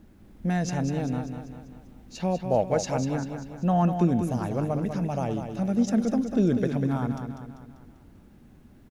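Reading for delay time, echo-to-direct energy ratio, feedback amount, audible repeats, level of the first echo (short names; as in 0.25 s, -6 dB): 0.196 s, -6.0 dB, 50%, 5, -7.5 dB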